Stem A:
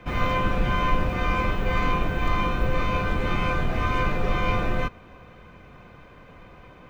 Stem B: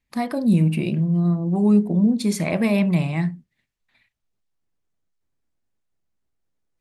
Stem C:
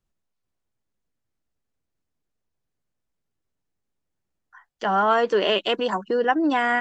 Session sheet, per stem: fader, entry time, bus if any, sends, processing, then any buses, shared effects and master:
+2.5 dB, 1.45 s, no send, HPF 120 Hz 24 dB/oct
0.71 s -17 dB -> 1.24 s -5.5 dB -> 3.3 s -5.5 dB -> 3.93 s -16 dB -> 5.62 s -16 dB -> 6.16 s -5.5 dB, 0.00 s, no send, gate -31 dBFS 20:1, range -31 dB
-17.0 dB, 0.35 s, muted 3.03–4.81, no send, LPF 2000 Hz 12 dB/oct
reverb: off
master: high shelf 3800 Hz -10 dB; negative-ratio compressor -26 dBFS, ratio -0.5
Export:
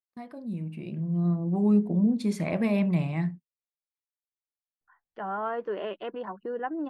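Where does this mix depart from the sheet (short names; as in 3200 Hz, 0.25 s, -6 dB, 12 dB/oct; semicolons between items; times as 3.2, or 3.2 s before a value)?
stem A: muted; stem C -17.0 dB -> -11.0 dB; master: missing negative-ratio compressor -26 dBFS, ratio -0.5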